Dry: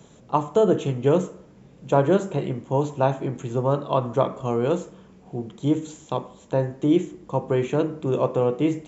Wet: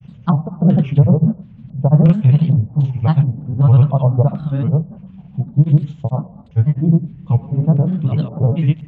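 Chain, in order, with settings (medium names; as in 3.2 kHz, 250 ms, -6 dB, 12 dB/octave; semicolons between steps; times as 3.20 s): LFO low-pass square 1.4 Hz 710–3000 Hz; resonant low shelf 240 Hz +13.5 dB, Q 3; granulator, pitch spread up and down by 3 st; trim -2.5 dB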